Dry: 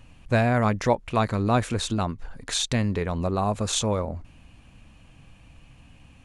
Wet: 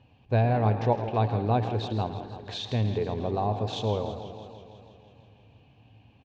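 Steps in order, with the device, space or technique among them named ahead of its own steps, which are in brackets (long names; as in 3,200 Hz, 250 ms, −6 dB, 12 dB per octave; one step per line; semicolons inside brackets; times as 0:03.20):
frequency-shifting delay pedal into a guitar cabinet (echo with shifted repeats 109 ms, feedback 52%, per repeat +52 Hz, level −13 dB; loudspeaker in its box 91–4,200 Hz, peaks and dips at 110 Hz +10 dB, 160 Hz −5 dB, 430 Hz +7 dB, 790 Hz +7 dB, 1,300 Hz −10 dB, 2,000 Hz −8 dB)
feedback echo with a swinging delay time 164 ms, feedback 68%, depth 123 cents, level −12 dB
level −6 dB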